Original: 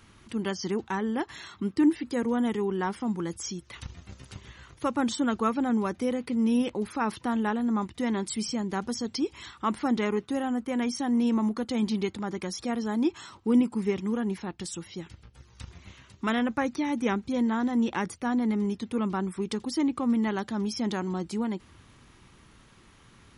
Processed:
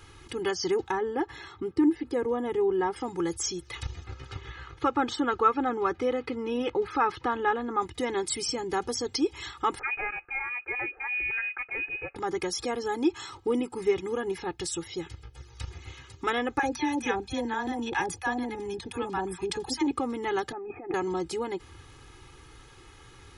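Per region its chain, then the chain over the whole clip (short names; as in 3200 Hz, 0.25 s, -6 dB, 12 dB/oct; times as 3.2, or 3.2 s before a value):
0.91–2.96 high shelf 2100 Hz -11 dB + notch 6600 Hz, Q 19
4.04–7.8 LPF 4100 Hz + bell 1300 Hz +5.5 dB 0.64 oct
9.79–12.16 HPF 1100 Hz 6 dB/oct + inverted band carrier 2700 Hz
16.59–19.91 comb 1.2 ms, depth 38% + bands offset in time highs, lows 40 ms, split 790 Hz
20.52–20.94 small resonant body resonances 360/730/1200 Hz, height 12 dB, ringing for 25 ms + negative-ratio compressor -30 dBFS, ratio -0.5 + rippled Chebyshev low-pass 2600 Hz, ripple 9 dB
whole clip: compressor 1.5:1, threshold -30 dBFS; comb 2.4 ms, depth 91%; gain +2 dB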